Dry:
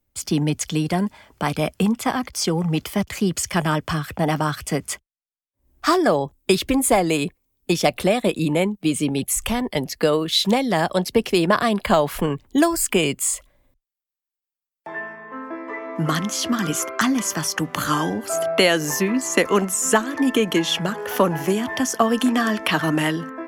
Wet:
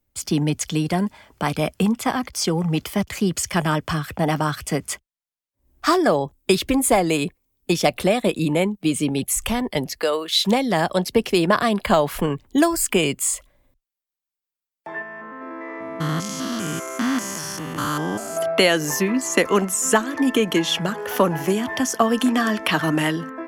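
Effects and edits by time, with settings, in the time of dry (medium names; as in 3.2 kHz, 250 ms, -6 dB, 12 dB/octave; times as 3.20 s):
10.00–10.46 s: high-pass 490 Hz
15.02–18.37 s: spectrogram pixelated in time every 200 ms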